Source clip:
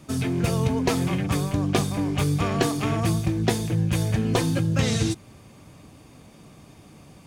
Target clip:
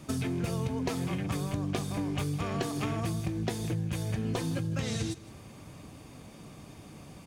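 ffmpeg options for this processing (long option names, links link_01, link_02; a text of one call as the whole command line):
ffmpeg -i in.wav -af "acompressor=threshold=-29dB:ratio=6,aecho=1:1:161:0.112" out.wav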